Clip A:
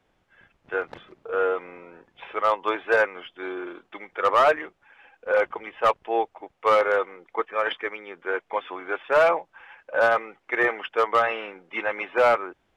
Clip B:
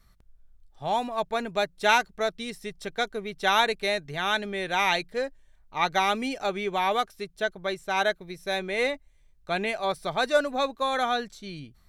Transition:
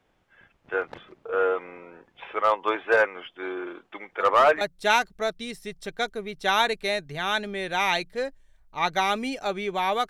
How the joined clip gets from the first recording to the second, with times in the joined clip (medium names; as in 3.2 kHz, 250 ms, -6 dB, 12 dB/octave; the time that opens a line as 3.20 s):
clip A
4.20 s: add clip B from 1.19 s 0.41 s -13.5 dB
4.61 s: go over to clip B from 1.60 s